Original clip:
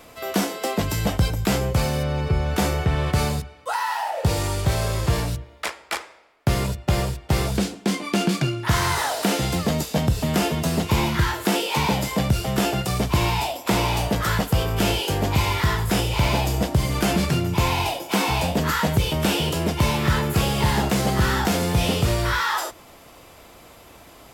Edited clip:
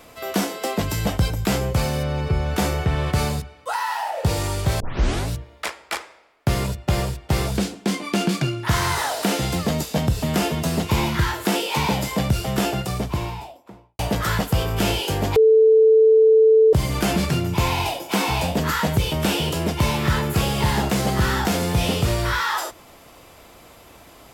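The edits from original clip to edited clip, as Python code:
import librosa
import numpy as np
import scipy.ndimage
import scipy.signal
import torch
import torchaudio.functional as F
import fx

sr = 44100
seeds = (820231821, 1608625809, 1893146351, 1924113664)

y = fx.studio_fade_out(x, sr, start_s=12.54, length_s=1.45)
y = fx.edit(y, sr, fx.tape_start(start_s=4.8, length_s=0.49),
    fx.bleep(start_s=15.36, length_s=1.37, hz=441.0, db=-10.0), tone=tone)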